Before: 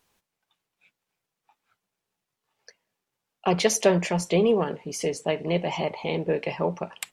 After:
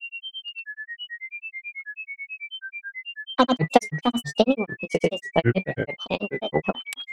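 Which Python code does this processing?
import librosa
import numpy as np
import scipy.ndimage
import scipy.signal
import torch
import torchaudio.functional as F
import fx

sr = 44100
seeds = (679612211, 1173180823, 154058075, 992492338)

y = fx.dynamic_eq(x, sr, hz=210.0, q=2.2, threshold_db=-38.0, ratio=4.0, max_db=7)
y = fx.transient(y, sr, attack_db=10, sustain_db=-3)
y = y + 10.0 ** (-28.0 / 20.0) * np.sin(2.0 * np.pi * 2200.0 * np.arange(len(y)) / sr)
y = fx.granulator(y, sr, seeds[0], grain_ms=100.0, per_s=9.2, spray_ms=100.0, spread_st=7)
y = F.gain(torch.from_numpy(y), -1.0).numpy()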